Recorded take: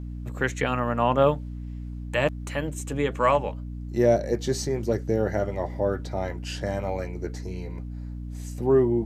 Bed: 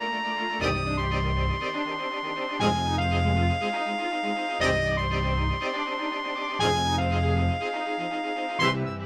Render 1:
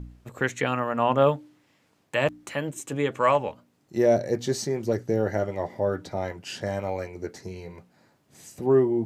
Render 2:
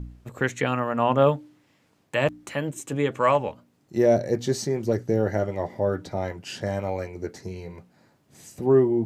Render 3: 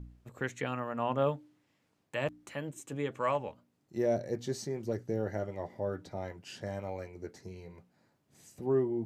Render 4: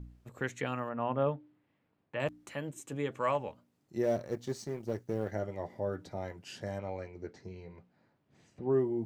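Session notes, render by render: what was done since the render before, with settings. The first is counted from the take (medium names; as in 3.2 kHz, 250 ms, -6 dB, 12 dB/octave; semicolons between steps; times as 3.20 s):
de-hum 60 Hz, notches 5
bass shelf 330 Hz +3.5 dB
trim -10.5 dB
0.89–2.20 s: distance through air 340 m; 4.03–5.32 s: companding laws mixed up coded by A; 6.78–8.71 s: low-pass 5.4 kHz -> 2.8 kHz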